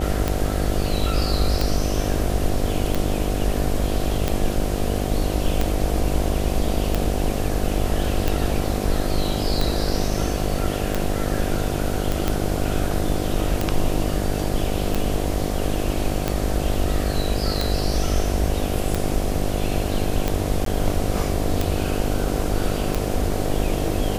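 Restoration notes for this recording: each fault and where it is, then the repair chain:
mains buzz 50 Hz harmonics 15 −26 dBFS
scratch tick 45 rpm −7 dBFS
0:12.12: click
0:20.65–0:20.66: drop-out 13 ms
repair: click removal
hum removal 50 Hz, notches 15
repair the gap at 0:20.65, 13 ms

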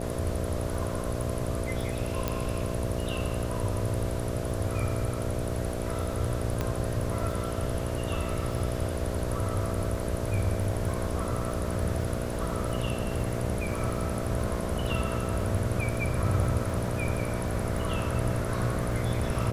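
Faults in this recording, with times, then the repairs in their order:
mains buzz 60 Hz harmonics 11 −34 dBFS
surface crackle 30 per second −37 dBFS
0:02.28: click −13 dBFS
0:06.61: click −15 dBFS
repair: click removal
hum removal 60 Hz, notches 11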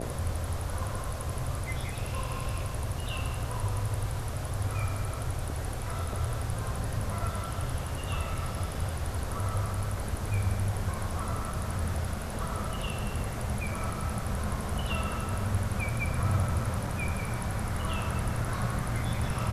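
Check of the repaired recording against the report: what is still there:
0:02.28: click

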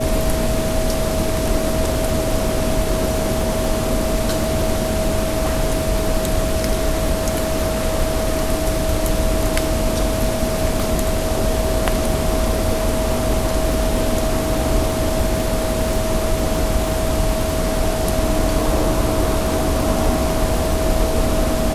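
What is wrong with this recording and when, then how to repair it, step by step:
surface crackle 29 per second −24 dBFS
whistle 640 Hz −23 dBFS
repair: click removal
notch filter 640 Hz, Q 30

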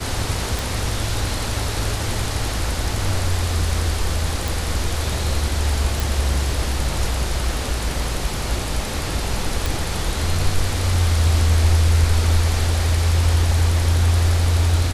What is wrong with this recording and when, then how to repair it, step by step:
0:00.59: click
0:04.48: click
0:06.00: click
0:09.66: click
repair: click removal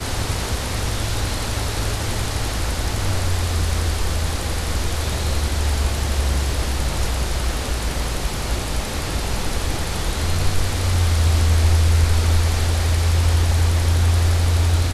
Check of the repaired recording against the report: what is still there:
none of them is left

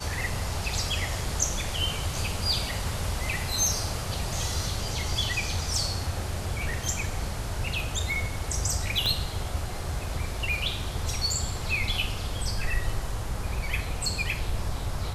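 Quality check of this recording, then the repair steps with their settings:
0:09.06: click −14 dBFS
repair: click removal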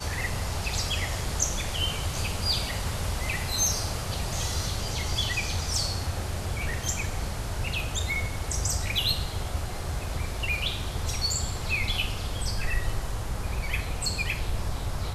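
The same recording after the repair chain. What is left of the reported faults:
0:09.06: click

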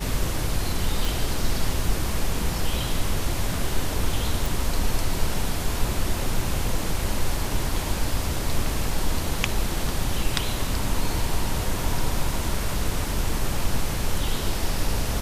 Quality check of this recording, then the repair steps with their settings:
0:01.05: click
0:04.46: click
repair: click removal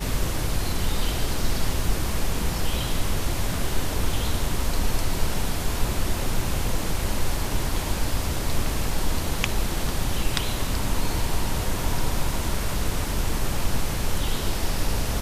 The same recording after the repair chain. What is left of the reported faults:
none of them is left

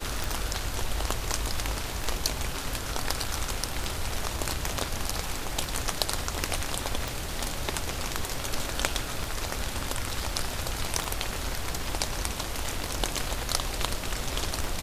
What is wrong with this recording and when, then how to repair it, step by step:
scratch tick 33 1/3 rpm
0:07.08: click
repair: click removal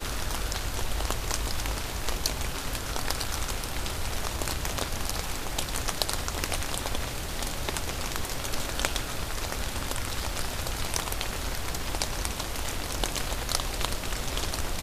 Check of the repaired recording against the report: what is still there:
none of them is left

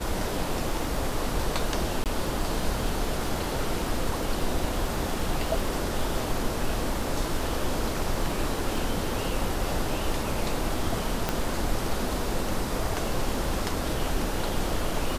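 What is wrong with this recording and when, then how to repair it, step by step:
surface crackle 21 per second −34 dBFS
0:02.04–0:02.06: drop-out 18 ms
0:11.29: click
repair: click removal
repair the gap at 0:02.04, 18 ms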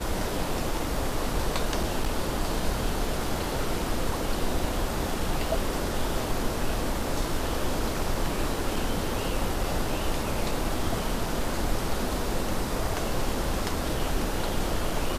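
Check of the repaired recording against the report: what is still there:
0:11.29: click

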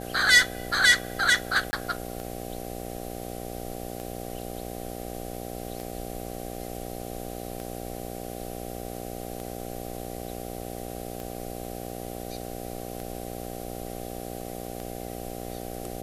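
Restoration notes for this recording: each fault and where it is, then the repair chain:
mains buzz 60 Hz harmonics 13 −37 dBFS
scratch tick 33 1/3 rpm
0:01.71–0:01.73: drop-out 20 ms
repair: click removal
hum removal 60 Hz, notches 13
repair the gap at 0:01.71, 20 ms

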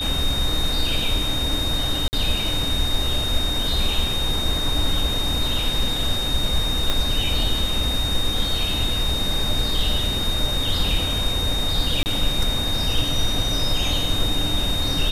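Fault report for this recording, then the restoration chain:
whistle 3,700 Hz −24 dBFS
0:02.08–0:02.13: drop-out 49 ms
0:06.90: click −8 dBFS
0:12.03–0:12.06: drop-out 29 ms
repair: click removal
notch filter 3,700 Hz, Q 30
repair the gap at 0:02.08, 49 ms
repair the gap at 0:12.03, 29 ms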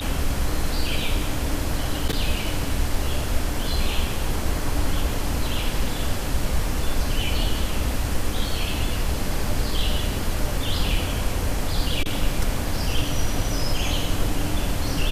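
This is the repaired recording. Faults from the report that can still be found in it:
0:06.90: click

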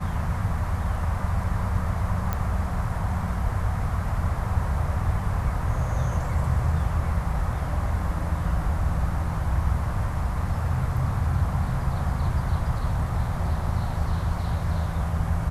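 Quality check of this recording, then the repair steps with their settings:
0:02.33: click −13 dBFS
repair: click removal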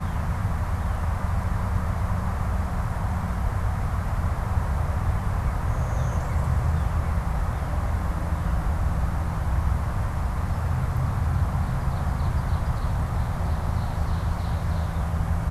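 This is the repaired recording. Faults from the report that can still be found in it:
none of them is left

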